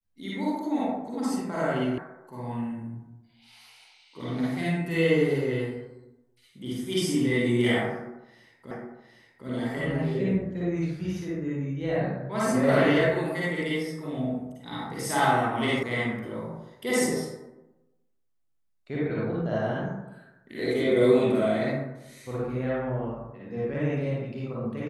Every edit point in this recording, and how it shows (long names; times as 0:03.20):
0:01.98: cut off before it has died away
0:08.71: the same again, the last 0.76 s
0:15.83: cut off before it has died away